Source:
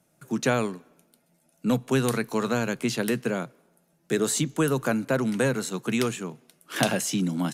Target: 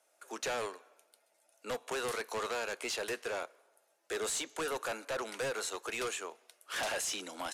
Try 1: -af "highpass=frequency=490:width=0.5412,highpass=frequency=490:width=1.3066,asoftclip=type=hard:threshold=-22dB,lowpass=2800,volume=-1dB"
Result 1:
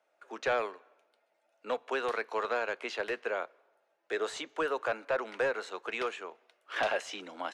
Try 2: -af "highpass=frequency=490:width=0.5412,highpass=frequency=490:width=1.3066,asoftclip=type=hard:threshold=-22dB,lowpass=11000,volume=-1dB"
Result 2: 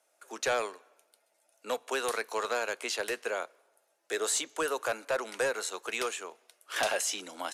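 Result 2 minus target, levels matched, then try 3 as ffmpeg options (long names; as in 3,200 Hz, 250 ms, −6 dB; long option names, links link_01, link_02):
hard clipping: distortion −8 dB
-af "highpass=frequency=490:width=0.5412,highpass=frequency=490:width=1.3066,asoftclip=type=hard:threshold=-31.5dB,lowpass=11000,volume=-1dB"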